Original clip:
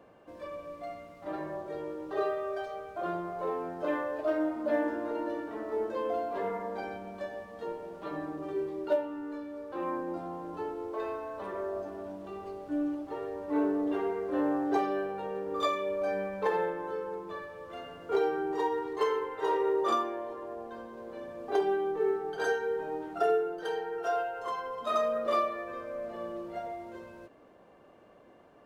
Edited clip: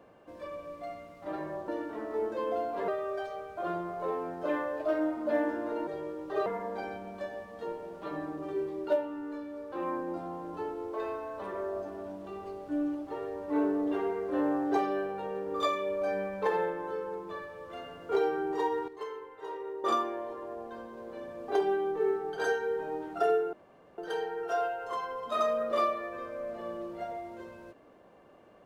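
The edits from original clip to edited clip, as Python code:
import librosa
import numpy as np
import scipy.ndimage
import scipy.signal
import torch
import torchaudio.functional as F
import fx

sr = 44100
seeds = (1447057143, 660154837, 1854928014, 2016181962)

y = fx.edit(x, sr, fx.swap(start_s=1.68, length_s=0.59, other_s=5.26, other_length_s=1.2),
    fx.clip_gain(start_s=18.88, length_s=0.96, db=-11.0),
    fx.insert_room_tone(at_s=23.53, length_s=0.45), tone=tone)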